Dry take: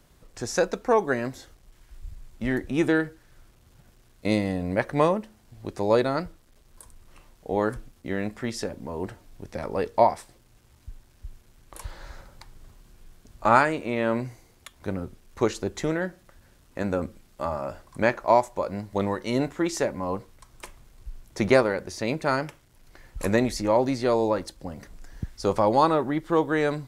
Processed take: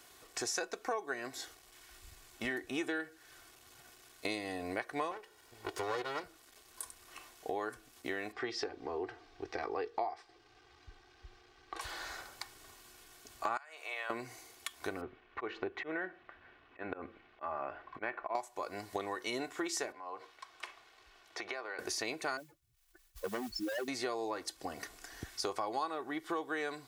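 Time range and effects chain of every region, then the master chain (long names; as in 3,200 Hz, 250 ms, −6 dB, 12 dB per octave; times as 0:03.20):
0:05.11–0:06.24: lower of the sound and its delayed copy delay 2.1 ms + high-shelf EQ 5,300 Hz −4.5 dB
0:08.32–0:11.81: high-frequency loss of the air 190 metres + comb filter 2.5 ms, depth 53%
0:13.57–0:14.10: high-pass filter 610 Hz 24 dB per octave + downward compressor 5 to 1, threshold −36 dBFS
0:15.01–0:18.35: low-pass filter 2,700 Hz 24 dB per octave + volume swells 235 ms
0:19.92–0:21.79: three-way crossover with the lows and the highs turned down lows −13 dB, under 380 Hz, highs −20 dB, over 4,700 Hz + downward compressor 4 to 1, threshold −42 dBFS
0:22.37–0:23.88: expanding power law on the bin magnitudes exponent 3.5 + hard clipping −22.5 dBFS + noise that follows the level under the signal 28 dB
whole clip: high-pass filter 980 Hz 6 dB per octave; comb filter 2.7 ms, depth 56%; downward compressor 5 to 1, threshold −41 dBFS; level +5.5 dB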